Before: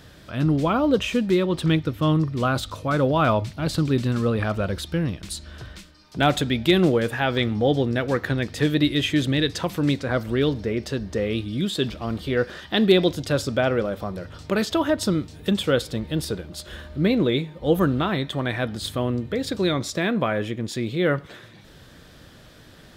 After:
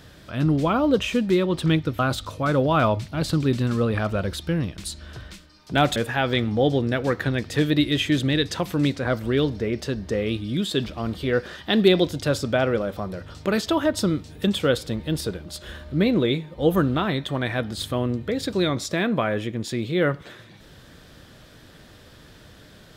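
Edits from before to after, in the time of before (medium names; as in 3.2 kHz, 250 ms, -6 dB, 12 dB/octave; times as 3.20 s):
1.99–2.44 s: delete
6.41–7.00 s: delete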